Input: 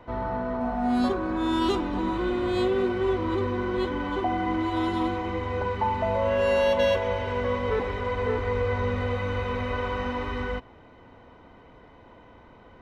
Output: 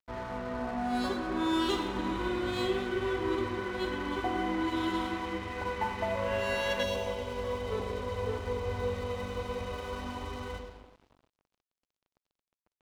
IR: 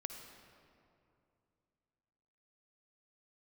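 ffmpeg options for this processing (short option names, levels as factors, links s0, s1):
-filter_complex "[0:a]highshelf=f=2600:g=7.5[s0];[1:a]atrim=start_sample=2205,asetrate=61740,aresample=44100[s1];[s0][s1]afir=irnorm=-1:irlink=0,aeval=exprs='sgn(val(0))*max(abs(val(0))-0.00501,0)':c=same,asetnsamples=n=441:p=0,asendcmd='6.83 equalizer g -7.5',equalizer=f=1800:w=1.2:g=2.5"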